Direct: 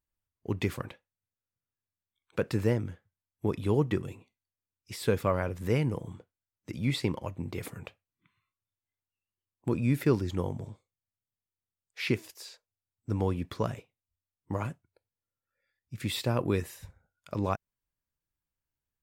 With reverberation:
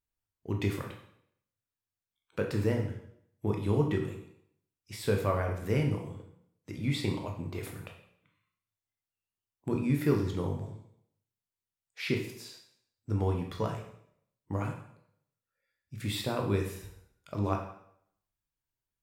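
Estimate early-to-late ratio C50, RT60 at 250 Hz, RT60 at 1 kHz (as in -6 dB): 6.5 dB, 0.70 s, 0.65 s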